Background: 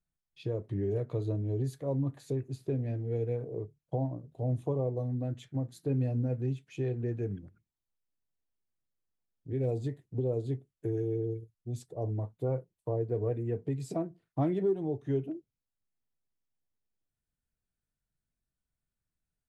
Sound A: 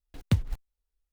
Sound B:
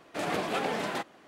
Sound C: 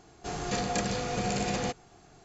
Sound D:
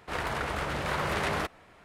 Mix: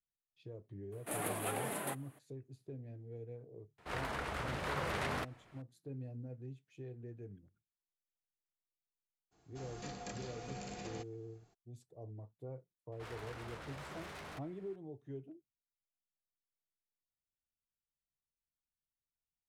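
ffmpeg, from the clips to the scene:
ffmpeg -i bed.wav -i cue0.wav -i cue1.wav -i cue2.wav -i cue3.wav -filter_complex "[4:a]asplit=2[link_01][link_02];[0:a]volume=-15.5dB[link_03];[2:a]highshelf=frequency=7600:width_type=q:width=3:gain=13.5[link_04];[link_02]asoftclip=type=tanh:threshold=-35dB[link_05];[link_04]atrim=end=1.27,asetpts=PTS-STARTPTS,volume=-8.5dB,afade=type=in:duration=0.004:curve=hsin,afade=type=out:start_time=1.266:duration=0.004:curve=hsin,adelay=920[link_06];[link_01]atrim=end=1.84,asetpts=PTS-STARTPTS,volume=-8dB,afade=type=in:duration=0.004:curve=hsin,afade=type=out:start_time=1.836:duration=0.004:curve=hsin,adelay=3780[link_07];[3:a]atrim=end=2.24,asetpts=PTS-STARTPTS,volume=-16dB,afade=type=in:duration=0.02,afade=type=out:start_time=2.22:duration=0.02,adelay=9310[link_08];[link_05]atrim=end=1.84,asetpts=PTS-STARTPTS,volume=-11.5dB,afade=type=in:duration=0.004:curve=hsin,afade=type=out:start_time=1.836:duration=0.004:curve=hsin,adelay=12920[link_09];[link_03][link_06][link_07][link_08][link_09]amix=inputs=5:normalize=0" out.wav

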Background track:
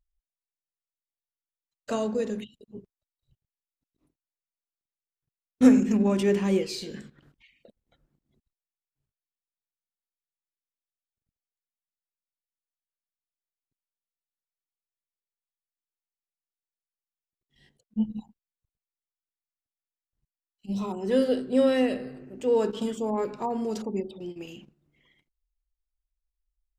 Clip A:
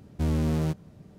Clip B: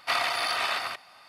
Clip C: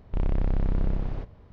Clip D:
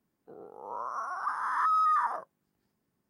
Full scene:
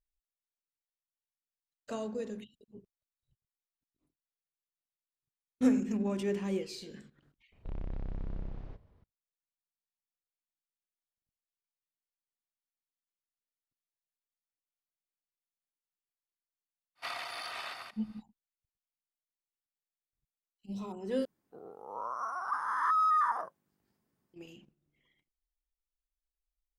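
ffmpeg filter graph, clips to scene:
ffmpeg -i bed.wav -i cue0.wav -i cue1.wav -i cue2.wav -i cue3.wav -filter_complex "[0:a]volume=-9.5dB,asplit=2[link_01][link_02];[link_01]atrim=end=21.254[link_03];[4:a]atrim=end=3.09,asetpts=PTS-STARTPTS,volume=-1.5dB[link_04];[link_02]atrim=start=24.336[link_05];[3:a]atrim=end=1.52,asetpts=PTS-STARTPTS,volume=-13.5dB,afade=type=in:duration=0.004:curve=hsin,afade=type=out:start_time=1.516:duration=0.004:curve=hsin,adelay=7520[link_06];[2:a]atrim=end=1.28,asetpts=PTS-STARTPTS,volume=-13dB,afade=type=in:duration=0.05,afade=type=out:start_time=1.23:duration=0.05,adelay=16950[link_07];[link_03][link_04]acrossfade=duration=0.004:curve1=hsin:curve2=hsin[link_08];[link_08][link_05]acrossfade=duration=0.004:curve1=hsin:curve2=hsin[link_09];[link_09][link_06][link_07]amix=inputs=3:normalize=0" out.wav

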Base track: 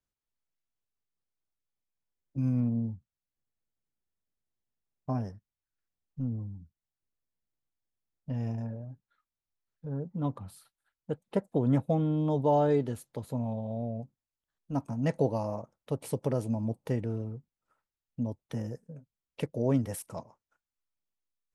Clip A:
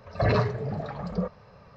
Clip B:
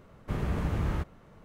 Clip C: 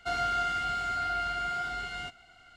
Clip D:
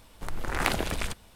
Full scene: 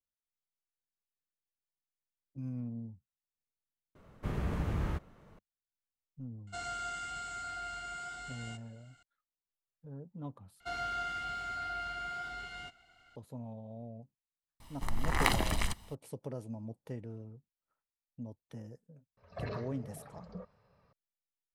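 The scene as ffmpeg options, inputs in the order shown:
ffmpeg -i bed.wav -i cue0.wav -i cue1.wav -i cue2.wav -i cue3.wav -filter_complex "[3:a]asplit=2[link_01][link_02];[0:a]volume=-11.5dB[link_03];[link_01]lowpass=frequency=7800:width_type=q:width=7[link_04];[4:a]aecho=1:1:1:0.52[link_05];[link_03]asplit=3[link_06][link_07][link_08];[link_06]atrim=end=3.954[link_09];[2:a]atrim=end=1.44,asetpts=PTS-STARTPTS,volume=-4dB[link_10];[link_07]atrim=start=5.386:end=10.604[link_11];[link_02]atrim=end=2.56,asetpts=PTS-STARTPTS,volume=-7.5dB[link_12];[link_08]atrim=start=13.156[link_13];[link_04]atrim=end=2.56,asetpts=PTS-STARTPTS,volume=-10.5dB,afade=type=in:duration=0.004:curve=hsin,afade=type=out:start_time=2.556:duration=0.004:curve=hsin,adelay=6470[link_14];[link_05]atrim=end=1.35,asetpts=PTS-STARTPTS,volume=-3dB,afade=type=in:duration=0.004:curve=hsin,afade=type=out:start_time=1.346:duration=0.004:curve=hsin,adelay=643860S[link_15];[1:a]atrim=end=1.76,asetpts=PTS-STARTPTS,volume=-17dB,afade=type=in:duration=0.004:curve=hsin,afade=type=out:start_time=1.756:duration=0.004:curve=hsin,adelay=19170[link_16];[link_09][link_10]acrossfade=duration=0.004:curve1=hsin:curve2=hsin[link_17];[link_17][link_11]acrossfade=duration=0.004:curve1=hsin:curve2=hsin[link_18];[link_18][link_12]acrossfade=duration=0.004:curve1=hsin:curve2=hsin[link_19];[link_19][link_13]acrossfade=duration=0.004:curve1=hsin:curve2=hsin[link_20];[link_20][link_14][link_15][link_16]amix=inputs=4:normalize=0" out.wav

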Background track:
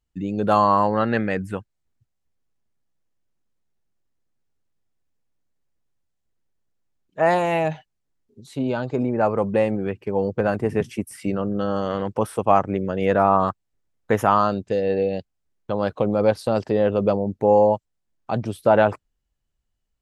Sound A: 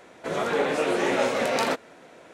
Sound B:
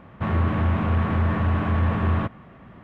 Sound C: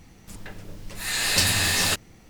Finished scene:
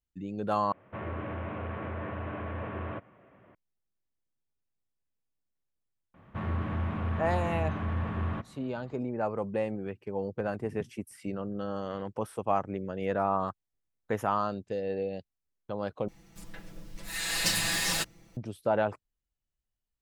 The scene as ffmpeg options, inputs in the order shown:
ffmpeg -i bed.wav -i cue0.wav -i cue1.wav -i cue2.wav -filter_complex "[2:a]asplit=2[link_01][link_02];[0:a]volume=-11dB[link_03];[link_01]highpass=140,equalizer=frequency=160:width_type=q:width=4:gain=-10,equalizer=frequency=230:width_type=q:width=4:gain=-8,equalizer=frequency=570:width_type=q:width=4:gain=4,equalizer=frequency=830:width_type=q:width=4:gain=-4,equalizer=frequency=1200:width_type=q:width=4:gain=-4,equalizer=frequency=1800:width_type=q:width=4:gain=-3,lowpass=frequency=2800:width=0.5412,lowpass=frequency=2800:width=1.3066[link_04];[3:a]aecho=1:1:6:0.97[link_05];[link_03]asplit=3[link_06][link_07][link_08];[link_06]atrim=end=0.724[link_09];[link_04]atrim=end=2.83,asetpts=PTS-STARTPTS,volume=-8dB[link_10];[link_07]atrim=start=3.546:end=16.084[link_11];[link_05]atrim=end=2.29,asetpts=PTS-STARTPTS,volume=-9.5dB[link_12];[link_08]atrim=start=18.366[link_13];[link_02]atrim=end=2.83,asetpts=PTS-STARTPTS,volume=-10dB,afade=type=in:duration=0.004:curve=hsin,afade=type=out:start_time=2.826:duration=0.004:curve=hsin,adelay=6140[link_14];[link_09][link_10]acrossfade=duration=0.004:curve1=hsin:curve2=hsin[link_15];[link_15][link_11]acrossfade=duration=0.004:curve1=hsin:curve2=hsin[link_16];[link_16][link_12]acrossfade=duration=0.004:curve1=hsin:curve2=hsin[link_17];[link_17][link_13]acrossfade=duration=0.004:curve1=hsin:curve2=hsin[link_18];[link_18][link_14]amix=inputs=2:normalize=0" out.wav

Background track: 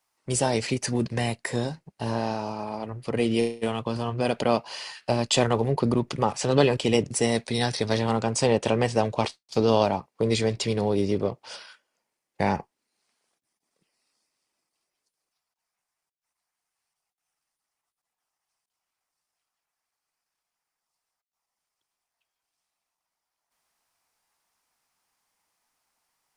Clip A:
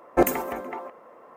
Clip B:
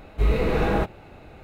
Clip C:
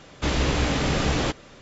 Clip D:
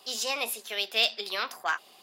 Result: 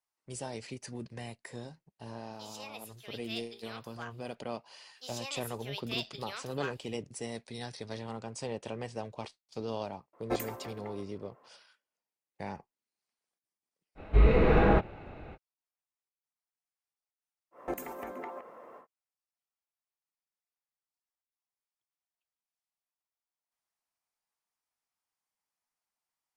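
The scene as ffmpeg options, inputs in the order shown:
ffmpeg -i bed.wav -i cue0.wav -i cue1.wav -i cue2.wav -i cue3.wav -filter_complex "[4:a]asplit=2[link_01][link_02];[1:a]asplit=2[link_03][link_04];[0:a]volume=-16dB[link_05];[2:a]lowpass=2900[link_06];[link_04]acompressor=threshold=-32dB:ratio=3:attack=0.28:release=603:knee=1:detection=peak[link_07];[link_01]atrim=end=2.02,asetpts=PTS-STARTPTS,volume=-16.5dB,afade=type=in:duration=0.004:curve=hsin,afade=type=out:start_time=2.016:duration=0.004:curve=hsin,adelay=2330[link_08];[link_02]atrim=end=2.02,asetpts=PTS-STARTPTS,volume=-12dB,afade=type=in:duration=0.1,afade=type=out:start_time=1.92:duration=0.1,adelay=4950[link_09];[link_03]atrim=end=1.36,asetpts=PTS-STARTPTS,volume=-13.5dB,afade=type=in:duration=0.004:curve=hsin,afade=type=out:start_time=1.356:duration=0.004:curve=hsin,adelay=10130[link_10];[link_06]atrim=end=1.43,asetpts=PTS-STARTPTS,volume=-0.5dB,afade=type=in:duration=0.05,afade=type=out:start_time=1.38:duration=0.05,adelay=13950[link_11];[link_07]atrim=end=1.36,asetpts=PTS-STARTPTS,volume=-1dB,afade=type=in:duration=0.1,afade=type=out:start_time=1.26:duration=0.1,adelay=17510[link_12];[link_05][link_08][link_09][link_10][link_11][link_12]amix=inputs=6:normalize=0" out.wav

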